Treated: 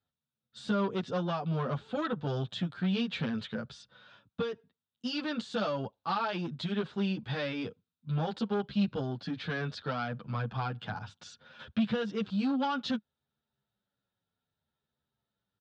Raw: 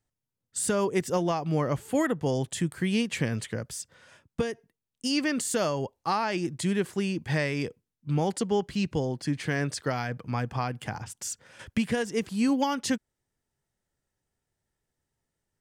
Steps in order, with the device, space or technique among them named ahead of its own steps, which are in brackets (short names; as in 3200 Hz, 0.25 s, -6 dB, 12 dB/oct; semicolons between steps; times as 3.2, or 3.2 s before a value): barber-pole flanger into a guitar amplifier (endless flanger 9.2 ms -0.62 Hz; soft clip -25 dBFS, distortion -14 dB; speaker cabinet 84–4200 Hz, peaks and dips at 210 Hz +5 dB, 340 Hz -7 dB, 1400 Hz +7 dB, 2000 Hz -9 dB, 3700 Hz +10 dB)